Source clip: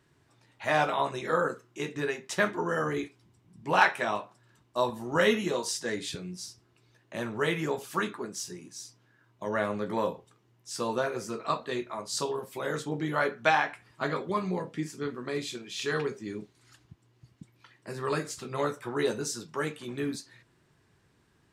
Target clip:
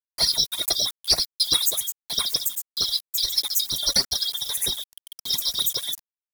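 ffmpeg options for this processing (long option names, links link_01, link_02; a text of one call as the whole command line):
ffmpeg -i in.wav -filter_complex "[0:a]afftfilt=real='real(if(lt(b,272),68*(eq(floor(b/68),0)*1+eq(floor(b/68),1)*0+eq(floor(b/68),2)*3+eq(floor(b/68),3)*2)+mod(b,68),b),0)':imag='imag(if(lt(b,272),68*(eq(floor(b/68),0)*1+eq(floor(b/68),1)*0+eq(floor(b/68),2)*3+eq(floor(b/68),3)*2)+mod(b,68),b),0)':win_size=2048:overlap=0.75,asplit=2[link_01][link_02];[link_02]acompressor=threshold=-37dB:ratio=10,volume=-1.5dB[link_03];[link_01][link_03]amix=inputs=2:normalize=0,atempo=1.7,acrusher=bits=6:mix=0:aa=0.000001,aexciter=amount=2.9:drive=6.6:freq=2300,flanger=delay=1:depth=3.1:regen=13:speed=1.6:shape=triangular,asetrate=88200,aresample=44100,alimiter=level_in=8.5dB:limit=-1dB:release=50:level=0:latency=1,volume=-5.5dB" out.wav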